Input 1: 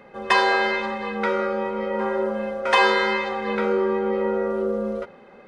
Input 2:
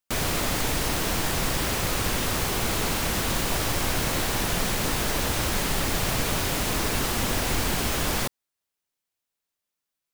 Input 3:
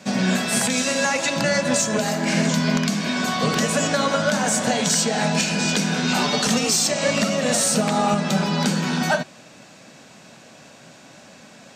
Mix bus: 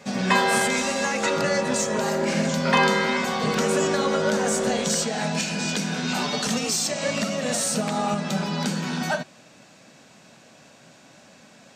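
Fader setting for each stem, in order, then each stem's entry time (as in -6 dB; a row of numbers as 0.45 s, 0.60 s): -2.5 dB, mute, -5.0 dB; 0.00 s, mute, 0.00 s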